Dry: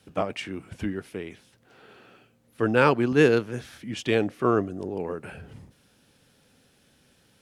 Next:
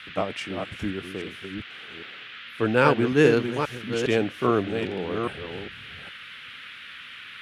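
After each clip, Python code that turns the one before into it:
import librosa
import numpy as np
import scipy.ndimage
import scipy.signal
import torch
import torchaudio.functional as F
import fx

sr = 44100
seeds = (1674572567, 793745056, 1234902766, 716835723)

y = fx.reverse_delay(x, sr, ms=406, wet_db=-6.0)
y = fx.dmg_noise_band(y, sr, seeds[0], low_hz=1300.0, high_hz=3400.0, level_db=-42.0)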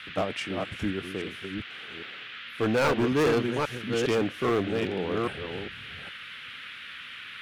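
y = np.clip(10.0 ** (20.0 / 20.0) * x, -1.0, 1.0) / 10.0 ** (20.0 / 20.0)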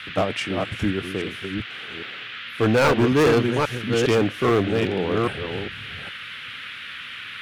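y = fx.peak_eq(x, sr, hz=110.0, db=4.5, octaves=0.44)
y = y * 10.0 ** (6.0 / 20.0)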